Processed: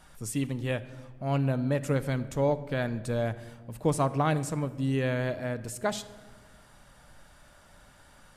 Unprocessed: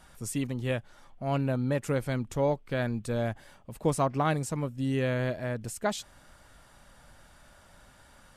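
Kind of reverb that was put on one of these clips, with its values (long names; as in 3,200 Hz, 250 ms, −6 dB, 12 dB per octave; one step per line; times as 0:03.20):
rectangular room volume 1,500 cubic metres, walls mixed, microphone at 0.42 metres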